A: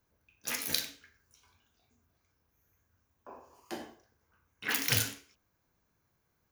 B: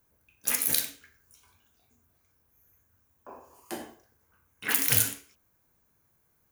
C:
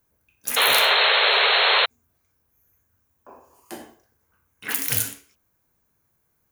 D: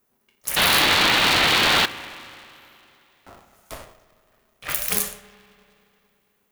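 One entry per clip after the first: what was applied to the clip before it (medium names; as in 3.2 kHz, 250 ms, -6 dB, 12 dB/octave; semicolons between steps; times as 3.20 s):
in parallel at +1 dB: peak limiter -17 dBFS, peak gain reduction 8.5 dB; on the sum: resonant high shelf 7 kHz +7.5 dB, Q 1.5; trim -3.5 dB
painted sound noise, 0.56–1.86 s, 390–4300 Hz -18 dBFS
spring tank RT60 2.8 s, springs 36/50 ms, chirp 60 ms, DRR 14.5 dB; polarity switched at an audio rate 310 Hz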